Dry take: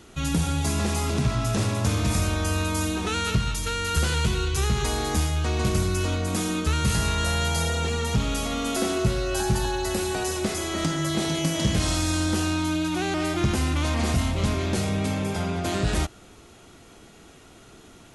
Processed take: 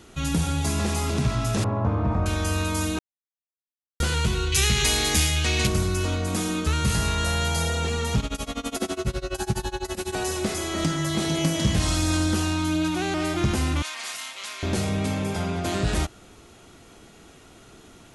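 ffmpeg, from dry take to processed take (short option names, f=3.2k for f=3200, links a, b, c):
-filter_complex "[0:a]asettb=1/sr,asplit=3[a][b][c];[a]atrim=end=1.644[d];[b]atrim=start=1.64:end=2.26,asetpts=PTS-STARTPTS,afade=t=in:d=0.004:c=qsin,afade=t=out:st=0.616:d=0.004:c=qsin,lowpass=f=980:t=q:w=1.7[e];[c]atrim=start=2.256[f];[d][e]acrossfade=d=0.004:c1=hsin:c2=qsin[g];[g][f]acrossfade=d=0.004:c1=qsin:c2=hsin,asettb=1/sr,asplit=3[h][i][j];[h]atrim=end=4.524[k];[i]atrim=start=4.52:end=5.67,asetpts=PTS-STARTPTS,afade=t=in:d=0.004:c=qsin,afade=t=out:st=1.146:d=0.004:c=qsin,highshelf=f=1.6k:t=q:w=1.5:g=8.5[l];[j]atrim=start=5.666[m];[k][l]acrossfade=d=0.004:c1=hsin:c2=qsin[n];[n][m]acrossfade=d=0.004:c1=qsin:c2=hsin,asplit=3[o][p][q];[o]afade=t=out:st=8.2:d=0.02[r];[p]tremolo=f=12:d=0.94,afade=t=in:st=8.2:d=0.02,afade=t=out:st=10.12:d=0.02[s];[q]afade=t=in:st=10.12:d=0.02[t];[r][s][t]amix=inputs=3:normalize=0,asplit=3[u][v][w];[u]afade=t=out:st=10.77:d=0.02[x];[v]aphaser=in_gain=1:out_gain=1:delay=1.1:decay=0.2:speed=1.4:type=sinusoidal,afade=t=in:st=10.77:d=0.02,afade=t=out:st=12.9:d=0.02[y];[w]afade=t=in:st=12.9:d=0.02[z];[x][y][z]amix=inputs=3:normalize=0,asettb=1/sr,asplit=3[aa][ab][ac];[aa]atrim=end=13.824[ad];[ab]atrim=start=13.82:end=14.63,asetpts=PTS-STARTPTS,afade=t=in:d=0.004:c=qsin,afade=t=out:st=0.806:d=0.004:c=qsin,highpass=1.5k[ae];[ac]atrim=start=14.626[af];[ad][ae]acrossfade=d=0.004:c1=hsin:c2=qsin[ag];[ag][af]acrossfade=d=0.004:c1=qsin:c2=hsin,asplit=3[ah][ai][aj];[ah]atrim=end=2.99,asetpts=PTS-STARTPTS,afade=t=out:st=2.986:d=0.004:c=hsin[ak];[ai]atrim=start=2.99:end=4,asetpts=PTS-STARTPTS,volume=0[al];[aj]atrim=start=4,asetpts=PTS-STARTPTS,afade=t=in:d=0.004:c=hsin[am];[ak][al][am]concat=n=3:v=0:a=1"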